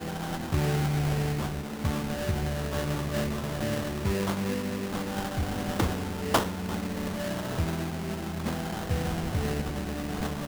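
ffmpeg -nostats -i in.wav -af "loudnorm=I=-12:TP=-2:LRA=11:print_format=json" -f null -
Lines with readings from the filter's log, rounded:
"input_i" : "-30.8",
"input_tp" : "-10.8",
"input_lra" : "1.8",
"input_thresh" : "-40.8",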